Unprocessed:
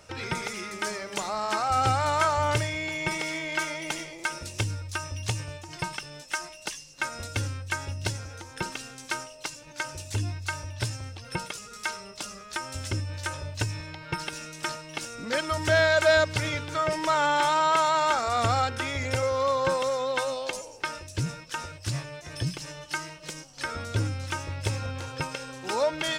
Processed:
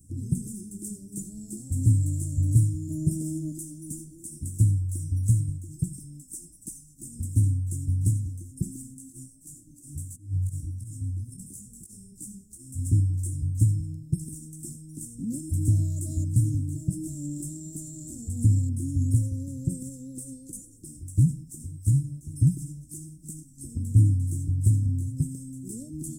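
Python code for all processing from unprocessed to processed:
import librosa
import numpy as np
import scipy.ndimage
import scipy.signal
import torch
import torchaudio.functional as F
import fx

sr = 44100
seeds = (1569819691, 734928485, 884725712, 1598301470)

y = fx.chain(x, sr, fx.peak_eq(hz=700.0, db=13.5, octaves=1.1),
    fx.doubler(ms=13.0, db=-4), at=(2.89, 3.52))
y = fx.chain(y, sr, fx.echo_single(ms=456, db=-18.5),
    fx.over_compress(threshold_db=-34.0, ratio=-0.5),
    fx.detune_double(cents=23), at=(8.94, 12.86))
y = scipy.signal.sosfilt(scipy.signal.cheby1(4, 1.0, [280.0, 8000.0], 'bandstop', fs=sr, output='sos'), y)
y = fx.dynamic_eq(y, sr, hz=130.0, q=0.75, threshold_db=-45.0, ratio=4.0, max_db=5)
y = y * 10.0 ** (5.5 / 20.0)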